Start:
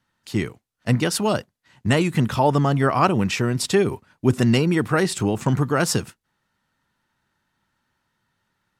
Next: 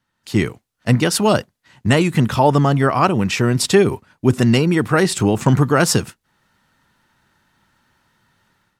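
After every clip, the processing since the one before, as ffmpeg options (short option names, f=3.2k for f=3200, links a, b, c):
-af "dynaudnorm=f=120:g=5:m=12dB,volume=-1dB"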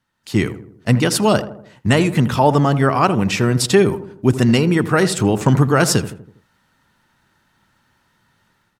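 -filter_complex "[0:a]asplit=2[a][b];[b]adelay=81,lowpass=f=1.2k:p=1,volume=-12dB,asplit=2[c][d];[d]adelay=81,lowpass=f=1.2k:p=1,volume=0.52,asplit=2[e][f];[f]adelay=81,lowpass=f=1.2k:p=1,volume=0.52,asplit=2[g][h];[h]adelay=81,lowpass=f=1.2k:p=1,volume=0.52,asplit=2[i][j];[j]adelay=81,lowpass=f=1.2k:p=1,volume=0.52[k];[a][c][e][g][i][k]amix=inputs=6:normalize=0"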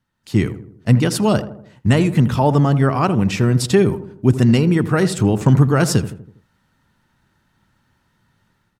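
-af "lowshelf=f=280:g=8.5,volume=-4.5dB"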